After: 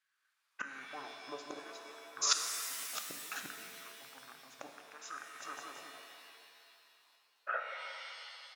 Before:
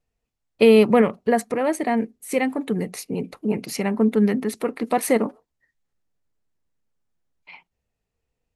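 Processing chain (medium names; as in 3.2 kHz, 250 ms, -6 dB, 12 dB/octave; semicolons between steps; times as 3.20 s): rattle on loud lows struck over -22 dBFS, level -16 dBFS; feedback delay 182 ms, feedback 43%, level -17 dB; inverted gate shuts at -22 dBFS, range -36 dB; LFO high-pass saw down 0.63 Hz 860–2800 Hz; tremolo saw up 0.56 Hz, depth 80%; pitch shift -8.5 st; pitch-shifted reverb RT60 2.4 s, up +7 st, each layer -2 dB, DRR 5 dB; trim +15 dB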